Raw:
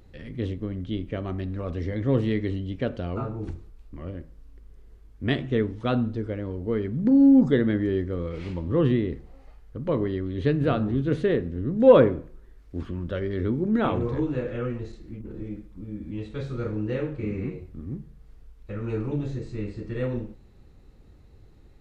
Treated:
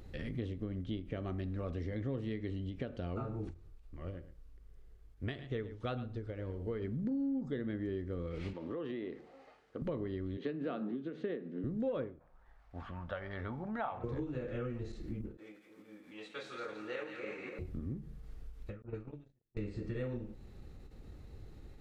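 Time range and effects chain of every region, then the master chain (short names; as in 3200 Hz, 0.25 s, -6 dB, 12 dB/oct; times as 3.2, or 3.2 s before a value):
3.54–6.82 bell 240 Hz -6.5 dB 1 oct + echo 0.111 s -13 dB + upward expander, over -40 dBFS
8.53–9.82 HPF 340 Hz + compressor, threshold -34 dBFS + air absorption 74 m
10.37–11.64 steep high-pass 180 Hz + air absorption 120 m
12.19–14.04 LPF 1400 Hz 6 dB/oct + resonant low shelf 540 Hz -13 dB, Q 3
15.37–17.59 HPF 780 Hz + tremolo saw up 6.6 Hz, depth 35% + split-band echo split 1500 Hz, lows 0.289 s, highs 0.169 s, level -7.5 dB
18.82–19.57 gate -29 dBFS, range -50 dB + low-pass opened by the level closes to 770 Hz, open at -23.5 dBFS + bell 300 Hz -3 dB 2.9 oct
whole clip: notch 990 Hz, Q 15; compressor 5:1, threshold -38 dBFS; ending taper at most 140 dB/s; gain +1.5 dB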